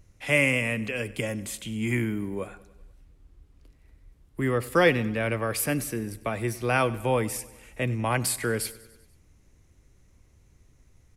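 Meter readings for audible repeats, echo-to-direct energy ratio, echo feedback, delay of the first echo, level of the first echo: 4, −17.5 dB, 60%, 97 ms, −19.5 dB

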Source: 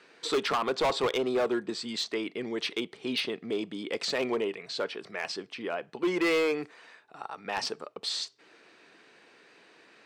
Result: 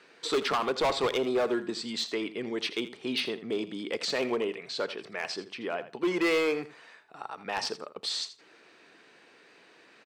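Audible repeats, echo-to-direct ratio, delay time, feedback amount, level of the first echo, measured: 2, −14.0 dB, 82 ms, 16%, −14.0 dB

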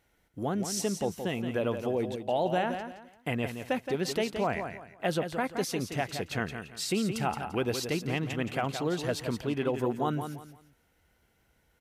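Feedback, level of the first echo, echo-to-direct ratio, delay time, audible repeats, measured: 28%, −8.0 dB, −7.5 dB, 171 ms, 3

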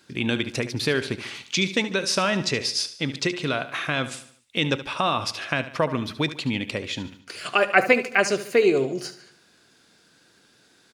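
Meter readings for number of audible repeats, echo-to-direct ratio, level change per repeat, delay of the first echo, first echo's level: 4, −12.5 dB, −6.5 dB, 73 ms, −13.5 dB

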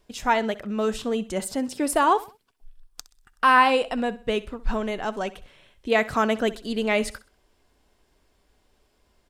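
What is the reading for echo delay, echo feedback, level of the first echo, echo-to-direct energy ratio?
64 ms, 36%, −18.0 dB, −17.5 dB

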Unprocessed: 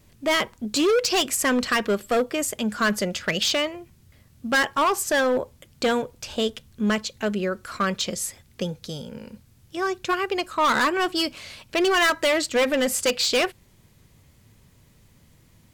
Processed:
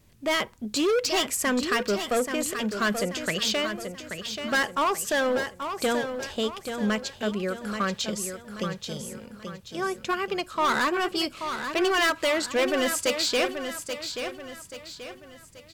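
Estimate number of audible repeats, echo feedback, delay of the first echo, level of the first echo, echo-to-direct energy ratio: 4, 41%, 832 ms, −8.0 dB, −7.0 dB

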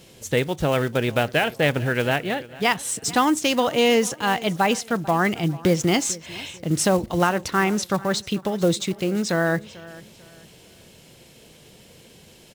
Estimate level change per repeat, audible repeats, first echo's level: −9.5 dB, 2, −20.0 dB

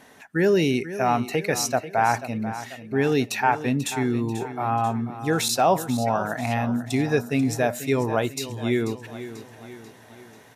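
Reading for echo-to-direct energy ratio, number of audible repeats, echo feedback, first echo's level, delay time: −12.0 dB, 4, 49%, −13.0 dB, 489 ms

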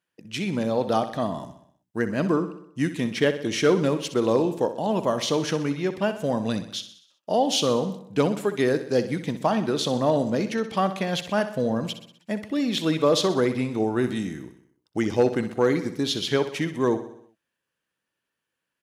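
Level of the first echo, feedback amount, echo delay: −12.0 dB, 55%, 63 ms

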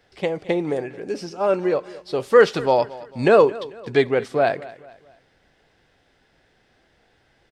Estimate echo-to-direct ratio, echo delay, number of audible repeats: −18.0 dB, 222 ms, 3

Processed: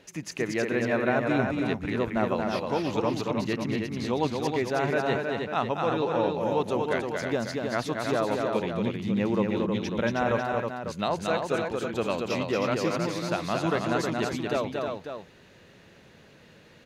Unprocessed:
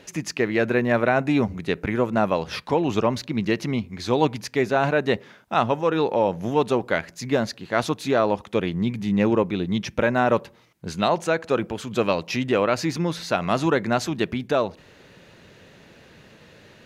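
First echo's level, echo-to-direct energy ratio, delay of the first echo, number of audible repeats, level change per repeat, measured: −4.0 dB, −1.0 dB, 230 ms, 3, repeats not evenly spaced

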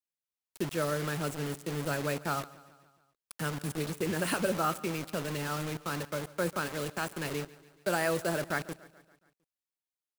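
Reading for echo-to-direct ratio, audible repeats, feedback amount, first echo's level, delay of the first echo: −18.0 dB, 4, 58%, −20.0 dB, 142 ms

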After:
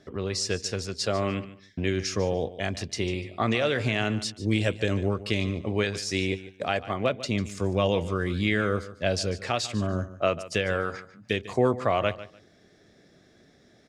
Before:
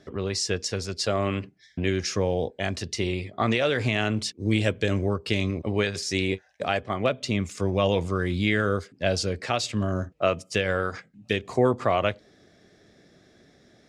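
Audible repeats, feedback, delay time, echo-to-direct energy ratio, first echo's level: 2, 21%, 147 ms, −15.5 dB, −15.5 dB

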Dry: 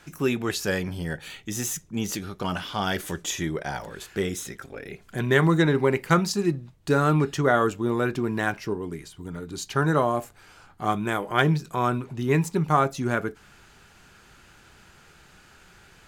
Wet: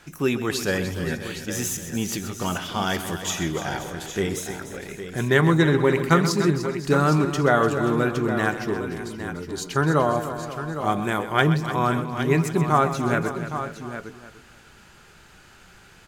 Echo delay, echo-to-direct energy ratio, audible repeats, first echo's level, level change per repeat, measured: 128 ms, −6.0 dB, 7, −12.5 dB, repeats not evenly spaced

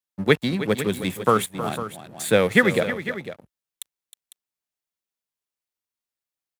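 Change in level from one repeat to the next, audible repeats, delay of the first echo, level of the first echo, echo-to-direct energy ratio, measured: repeats not evenly spaced, 2, 314 ms, −12.5 dB, −9.5 dB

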